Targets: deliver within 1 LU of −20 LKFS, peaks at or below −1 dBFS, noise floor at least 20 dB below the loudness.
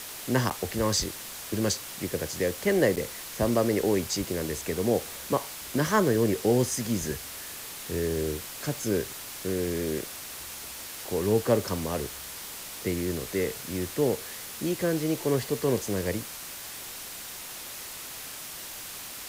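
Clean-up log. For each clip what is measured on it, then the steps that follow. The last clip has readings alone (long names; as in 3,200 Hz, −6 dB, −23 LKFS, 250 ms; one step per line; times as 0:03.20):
number of dropouts 2; longest dropout 8.4 ms; background noise floor −40 dBFS; target noise floor −50 dBFS; integrated loudness −29.5 LKFS; sample peak −9.0 dBFS; target loudness −20.0 LKFS
→ repair the gap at 0:00.50/0:02.96, 8.4 ms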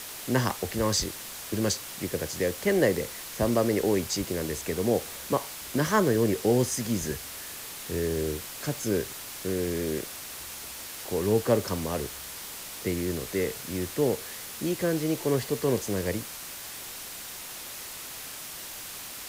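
number of dropouts 0; background noise floor −40 dBFS; target noise floor −50 dBFS
→ noise reduction from a noise print 10 dB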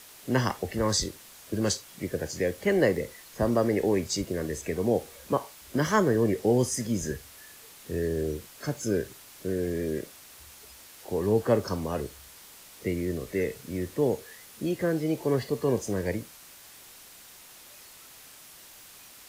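background noise floor −50 dBFS; integrated loudness −29.0 LKFS; sample peak −9.0 dBFS; target loudness −20.0 LKFS
→ level +9 dB
brickwall limiter −1 dBFS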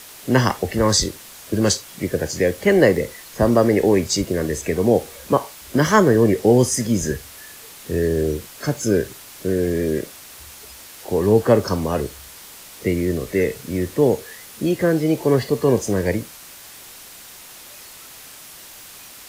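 integrated loudness −20.0 LKFS; sample peak −1.0 dBFS; background noise floor −41 dBFS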